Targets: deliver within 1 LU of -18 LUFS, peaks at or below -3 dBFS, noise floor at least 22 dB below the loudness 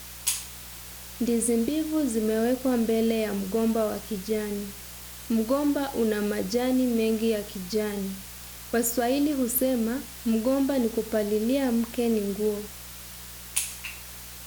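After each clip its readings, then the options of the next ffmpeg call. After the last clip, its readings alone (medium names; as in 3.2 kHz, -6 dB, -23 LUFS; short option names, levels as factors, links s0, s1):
hum 60 Hz; highest harmonic 180 Hz; hum level -47 dBFS; noise floor -42 dBFS; noise floor target -49 dBFS; loudness -26.5 LUFS; peak level -8.0 dBFS; loudness target -18.0 LUFS
-> -af "bandreject=f=60:t=h:w=4,bandreject=f=120:t=h:w=4,bandreject=f=180:t=h:w=4"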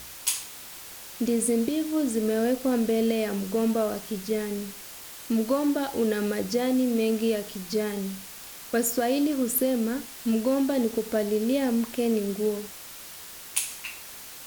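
hum not found; noise floor -43 dBFS; noise floor target -49 dBFS
-> -af "afftdn=nr=6:nf=-43"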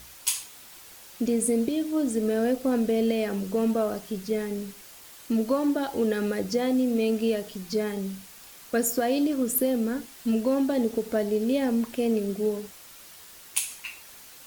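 noise floor -48 dBFS; noise floor target -49 dBFS
-> -af "afftdn=nr=6:nf=-48"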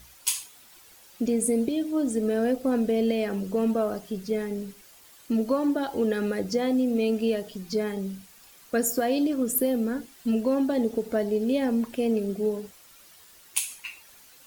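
noise floor -53 dBFS; loudness -27.0 LUFS; peak level -8.0 dBFS; loudness target -18.0 LUFS
-> -af "volume=2.82,alimiter=limit=0.708:level=0:latency=1"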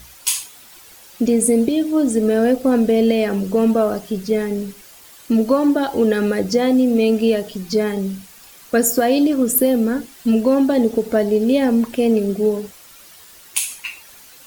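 loudness -18.0 LUFS; peak level -3.0 dBFS; noise floor -44 dBFS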